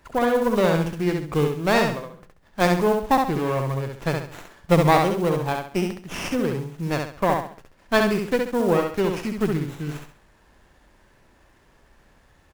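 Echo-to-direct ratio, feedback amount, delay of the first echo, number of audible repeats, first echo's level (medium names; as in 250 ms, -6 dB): -3.5 dB, 34%, 67 ms, 4, -4.0 dB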